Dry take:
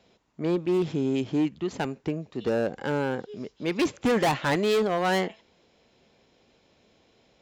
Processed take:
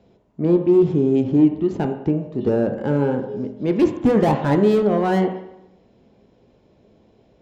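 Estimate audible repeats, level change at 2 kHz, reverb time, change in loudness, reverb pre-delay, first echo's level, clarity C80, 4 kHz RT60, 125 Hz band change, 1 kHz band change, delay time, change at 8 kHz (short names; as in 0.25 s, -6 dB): none, -2.5 dB, 0.80 s, +8.0 dB, 10 ms, none, 10.5 dB, 0.75 s, +10.0 dB, +4.0 dB, none, n/a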